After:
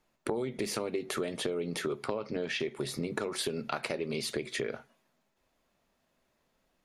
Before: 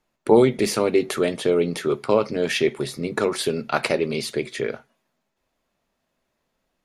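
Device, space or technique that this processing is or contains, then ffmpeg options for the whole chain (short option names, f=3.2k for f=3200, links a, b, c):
serial compression, peaks first: -filter_complex "[0:a]acompressor=threshold=-25dB:ratio=6,acompressor=threshold=-33dB:ratio=2,asettb=1/sr,asplit=3[a][b][c];[a]atrim=end=2.084[d];[b]atrim=start=2.08:end=2.6,asetpts=PTS-STARTPTS,afade=t=in:d=0.004:c=qsin,afade=t=out:st=0.516:d=0.004:c=qsin,lowpass=5.2k[e];[c]atrim=start=2.596[f];[d][e]acrossfade=d=0.004:c1=hsin:c2=qsin[g];[g][f]acrossfade=d=0.004:c1=qsin:c2=hsin"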